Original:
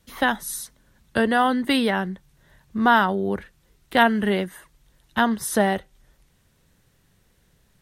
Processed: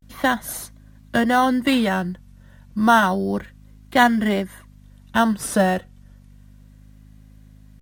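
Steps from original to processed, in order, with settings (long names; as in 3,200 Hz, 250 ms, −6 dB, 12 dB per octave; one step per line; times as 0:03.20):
mains hum 50 Hz, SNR 24 dB
notch comb filter 430 Hz
in parallel at −11 dB: decimation without filtering 9×
on the sum: pitch vibrato 0.31 Hz 75 cents
level +1 dB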